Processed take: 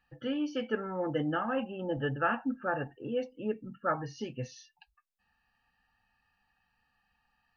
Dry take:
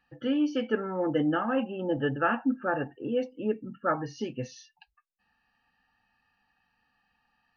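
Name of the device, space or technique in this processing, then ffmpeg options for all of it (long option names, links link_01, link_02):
low shelf boost with a cut just above: -af "lowshelf=frequency=100:gain=7.5,equalizer=frequency=290:width_type=o:width=1.1:gain=-5,volume=-2.5dB"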